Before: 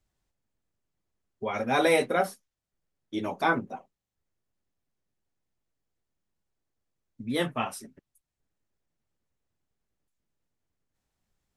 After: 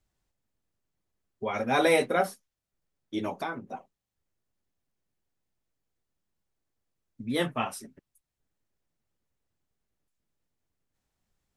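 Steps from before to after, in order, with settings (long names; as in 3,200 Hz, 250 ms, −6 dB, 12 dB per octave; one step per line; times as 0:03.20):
0:03.29–0:03.69: downward compressor 6 to 1, threshold −31 dBFS, peak gain reduction 12 dB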